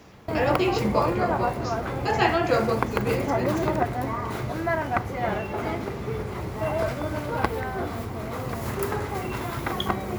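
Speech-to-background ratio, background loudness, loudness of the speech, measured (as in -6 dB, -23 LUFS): 1.0 dB, -28.0 LUFS, -27.0 LUFS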